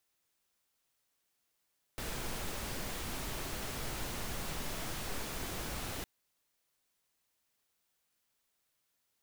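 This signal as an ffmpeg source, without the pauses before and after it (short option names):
-f lavfi -i "anoisesrc=c=pink:a=0.0575:d=4.06:r=44100:seed=1"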